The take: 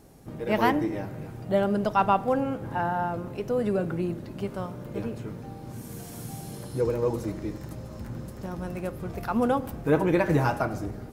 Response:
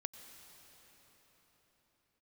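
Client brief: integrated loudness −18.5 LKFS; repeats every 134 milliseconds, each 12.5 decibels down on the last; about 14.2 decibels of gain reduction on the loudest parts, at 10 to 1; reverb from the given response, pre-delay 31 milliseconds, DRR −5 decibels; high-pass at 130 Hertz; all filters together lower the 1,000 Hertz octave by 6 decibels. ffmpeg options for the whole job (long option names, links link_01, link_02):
-filter_complex "[0:a]highpass=130,equalizer=frequency=1000:width_type=o:gain=-8,acompressor=threshold=-34dB:ratio=10,aecho=1:1:134|268|402:0.237|0.0569|0.0137,asplit=2[link_01][link_02];[1:a]atrim=start_sample=2205,adelay=31[link_03];[link_02][link_03]afir=irnorm=-1:irlink=0,volume=7.5dB[link_04];[link_01][link_04]amix=inputs=2:normalize=0,volume=15dB"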